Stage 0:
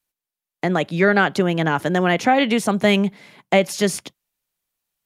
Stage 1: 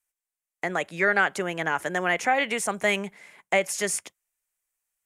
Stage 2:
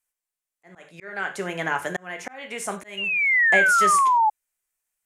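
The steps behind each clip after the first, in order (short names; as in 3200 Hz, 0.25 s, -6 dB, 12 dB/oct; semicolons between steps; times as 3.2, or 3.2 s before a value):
graphic EQ 125/250/2000/4000/8000 Hz -11/-8/+6/-8/+10 dB; gain -6 dB
non-linear reverb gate 0.12 s falling, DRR 5.5 dB; painted sound fall, 2.97–4.3, 840–2900 Hz -18 dBFS; auto swell 0.559 s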